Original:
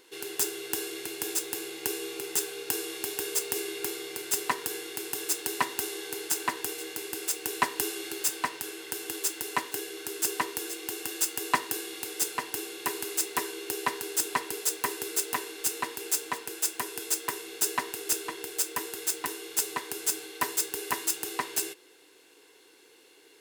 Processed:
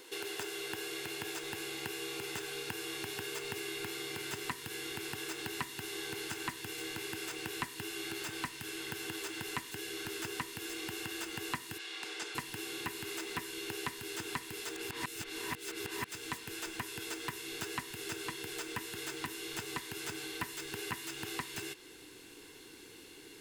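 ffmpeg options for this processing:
-filter_complex "[0:a]asplit=3[a][b][c];[a]afade=t=out:st=11.77:d=0.02[d];[b]highpass=670,lowpass=4.1k,afade=t=in:st=11.77:d=0.02,afade=t=out:st=12.34:d=0.02[e];[c]afade=t=in:st=12.34:d=0.02[f];[d][e][f]amix=inputs=3:normalize=0,asplit=3[g][h][i];[g]atrim=end=14.762[j];[h]atrim=start=14.758:end=16.122,asetpts=PTS-STARTPTS,areverse[k];[i]atrim=start=16.118[l];[j][k]acrossfade=d=0.004:c1=hsin:c2=hsin[m];[m][l]acrossfade=d=0.004:c1=hsin:c2=hsin,acrossover=split=3200[n][o];[o]acompressor=threshold=-40dB:ratio=4:attack=1:release=60[p];[n][p]amix=inputs=2:normalize=0,asubboost=boost=10.5:cutoff=160,acrossover=split=560|1600|6500[q][r][s][t];[q]acompressor=threshold=-51dB:ratio=4[u];[r]acompressor=threshold=-51dB:ratio=4[v];[s]acompressor=threshold=-47dB:ratio=4[w];[t]acompressor=threshold=-54dB:ratio=4[x];[u][v][w][x]amix=inputs=4:normalize=0,volume=4.5dB"

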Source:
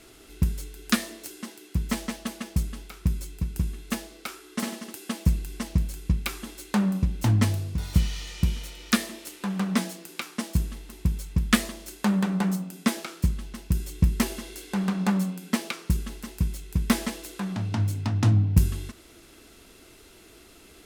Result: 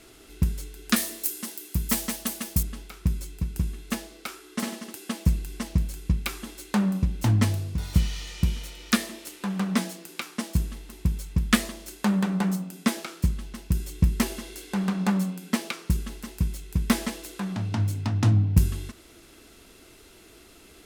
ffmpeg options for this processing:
-filter_complex "[0:a]asettb=1/sr,asplit=3[a][b][c];[a]atrim=end=0.964[d];[b]atrim=start=0.96:end=2.63,asetpts=PTS-STARTPTS,afade=t=in:d=0.004:c=qsin,afade=t=out:st=1.666:d=0.004:c=qsin,aemphasis=mode=production:type=50fm[e];[c]atrim=start=2.626[f];[d][e]acrossfade=d=0.004:c1=hsin:c2=qsin[g];[g][f]acrossfade=d=0.004:c1=qsin:c2=hsin"

